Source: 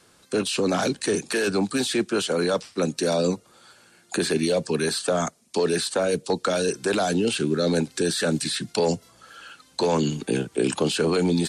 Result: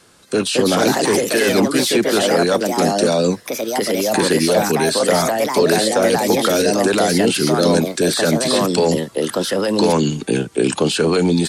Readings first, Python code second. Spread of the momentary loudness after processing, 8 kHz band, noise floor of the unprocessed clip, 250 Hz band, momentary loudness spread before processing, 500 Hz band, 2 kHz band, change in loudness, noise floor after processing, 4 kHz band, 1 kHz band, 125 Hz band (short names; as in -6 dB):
5 LU, +8.5 dB, -57 dBFS, +7.5 dB, 5 LU, +8.0 dB, +8.0 dB, +8.0 dB, -39 dBFS, +8.0 dB, +10.0 dB, +6.5 dB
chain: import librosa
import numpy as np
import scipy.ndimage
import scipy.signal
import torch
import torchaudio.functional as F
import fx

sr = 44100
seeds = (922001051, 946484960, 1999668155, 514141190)

y = fx.echo_pitch(x, sr, ms=274, semitones=3, count=2, db_per_echo=-3.0)
y = y * librosa.db_to_amplitude(6.0)